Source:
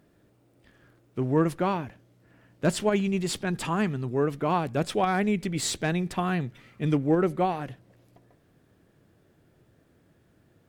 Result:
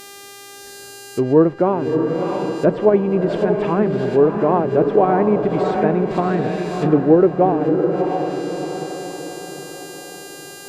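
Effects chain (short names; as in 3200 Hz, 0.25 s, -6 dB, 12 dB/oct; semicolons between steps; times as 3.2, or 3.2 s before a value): bell 450 Hz +12 dB 1.9 oct; buzz 400 Hz, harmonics 37, -40 dBFS -2 dB/oct; diffused feedback echo 0.654 s, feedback 49%, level -4.5 dB; treble ducked by the level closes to 1500 Hz, closed at -14 dBFS; gain +1 dB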